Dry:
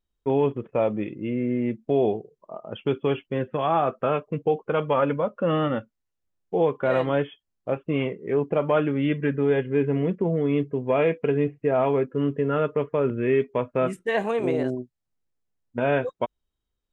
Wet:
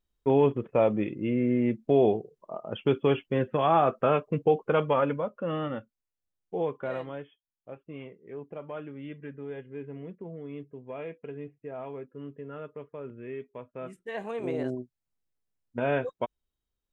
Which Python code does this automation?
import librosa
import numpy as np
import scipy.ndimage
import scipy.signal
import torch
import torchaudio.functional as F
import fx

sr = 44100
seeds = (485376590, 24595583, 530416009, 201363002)

y = fx.gain(x, sr, db=fx.line((4.73, 0.0), (5.42, -8.0), (6.76, -8.0), (7.24, -17.0), (13.72, -17.0), (14.73, -4.5)))